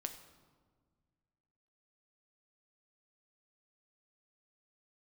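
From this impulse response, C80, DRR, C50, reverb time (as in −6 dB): 12.0 dB, 5.5 dB, 10.0 dB, 1.6 s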